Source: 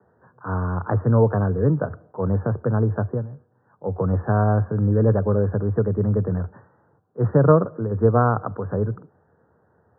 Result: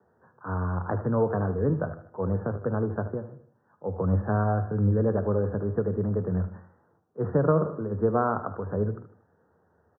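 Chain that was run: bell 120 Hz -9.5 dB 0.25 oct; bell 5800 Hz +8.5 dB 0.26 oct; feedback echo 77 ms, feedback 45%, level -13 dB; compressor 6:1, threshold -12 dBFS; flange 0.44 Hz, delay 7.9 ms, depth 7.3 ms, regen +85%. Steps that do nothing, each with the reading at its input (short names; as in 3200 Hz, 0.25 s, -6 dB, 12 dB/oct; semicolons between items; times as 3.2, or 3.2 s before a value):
bell 5800 Hz: input band ends at 1400 Hz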